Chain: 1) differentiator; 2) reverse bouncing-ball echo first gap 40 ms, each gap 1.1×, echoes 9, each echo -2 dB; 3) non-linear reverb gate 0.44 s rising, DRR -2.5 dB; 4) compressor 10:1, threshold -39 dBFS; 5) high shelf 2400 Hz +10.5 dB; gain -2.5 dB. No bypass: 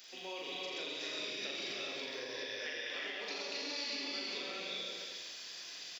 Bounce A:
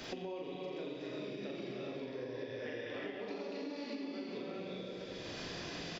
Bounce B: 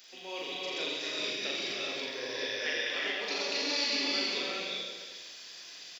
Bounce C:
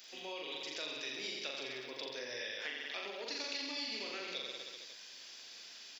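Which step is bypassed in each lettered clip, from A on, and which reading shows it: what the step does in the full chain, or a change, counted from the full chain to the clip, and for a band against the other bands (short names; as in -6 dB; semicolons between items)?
1, 125 Hz band +15.5 dB; 4, mean gain reduction 4.5 dB; 3, momentary loudness spread change +5 LU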